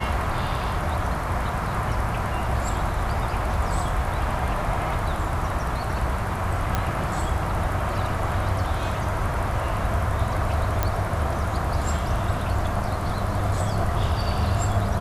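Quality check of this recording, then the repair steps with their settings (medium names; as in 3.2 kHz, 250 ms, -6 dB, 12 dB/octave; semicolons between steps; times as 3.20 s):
6.75 s: pop -9 dBFS
10.83 s: pop -8 dBFS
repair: de-click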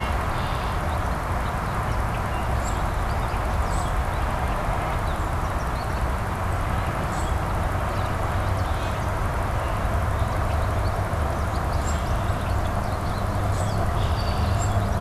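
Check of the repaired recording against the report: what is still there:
10.83 s: pop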